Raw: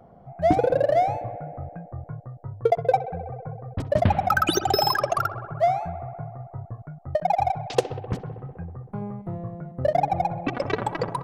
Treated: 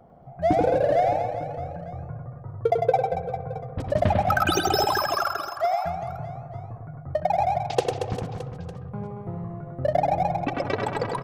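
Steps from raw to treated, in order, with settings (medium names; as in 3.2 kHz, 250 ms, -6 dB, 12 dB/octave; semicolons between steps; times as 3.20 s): 4.84–5.84 s: high-pass 640 Hz 24 dB/octave; on a send: reverse bouncing-ball echo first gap 100 ms, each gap 1.3×, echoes 5; on the sum: trim -2 dB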